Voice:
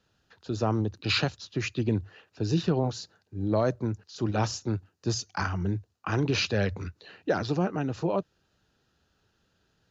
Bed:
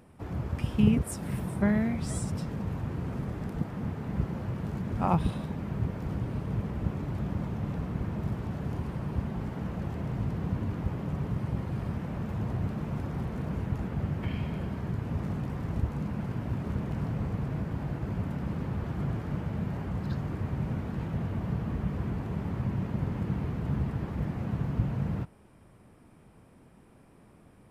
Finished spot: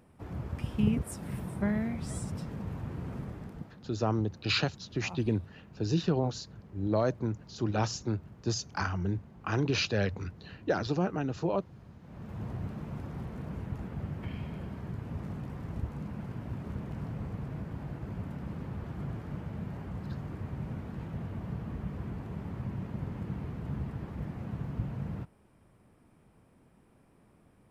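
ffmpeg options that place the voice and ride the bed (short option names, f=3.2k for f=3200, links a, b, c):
-filter_complex "[0:a]adelay=3400,volume=-2.5dB[a];[1:a]volume=8dB,afade=t=out:st=3.17:d=0.65:silence=0.199526,afade=t=in:st=12.01:d=0.43:silence=0.237137[b];[a][b]amix=inputs=2:normalize=0"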